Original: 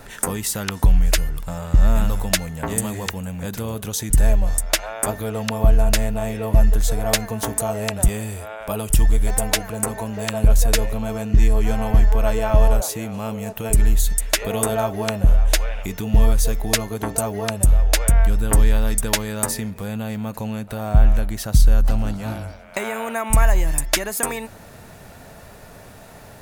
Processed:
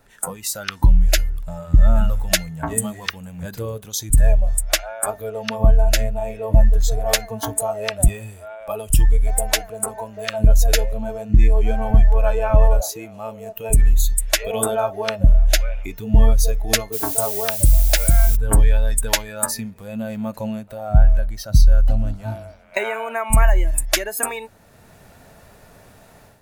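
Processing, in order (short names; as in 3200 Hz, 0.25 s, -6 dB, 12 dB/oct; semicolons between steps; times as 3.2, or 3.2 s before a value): spectral noise reduction 13 dB; 16.92–18.35 added noise violet -28 dBFS; AGC gain up to 10 dB; gain -2 dB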